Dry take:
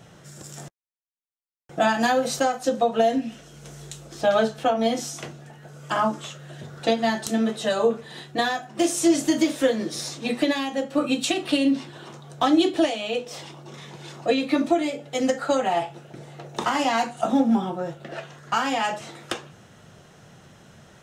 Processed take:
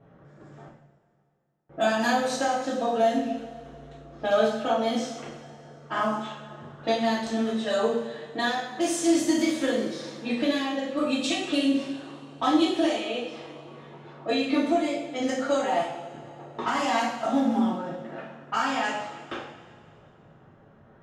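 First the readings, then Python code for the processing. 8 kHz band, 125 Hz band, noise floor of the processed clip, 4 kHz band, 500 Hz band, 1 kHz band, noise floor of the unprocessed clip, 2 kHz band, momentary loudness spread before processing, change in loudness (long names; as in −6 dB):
−4.5 dB, −5.0 dB, −56 dBFS, −2.5 dB, −2.5 dB, −2.5 dB, −52 dBFS, −2.0 dB, 19 LU, −2.5 dB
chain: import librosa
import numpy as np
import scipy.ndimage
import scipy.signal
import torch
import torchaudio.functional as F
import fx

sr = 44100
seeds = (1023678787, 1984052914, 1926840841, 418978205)

y = fx.env_lowpass(x, sr, base_hz=1100.0, full_db=-18.0)
y = fx.rev_double_slope(y, sr, seeds[0], early_s=0.59, late_s=2.5, knee_db=-15, drr_db=-5.5)
y = y * 10.0 ** (-8.5 / 20.0)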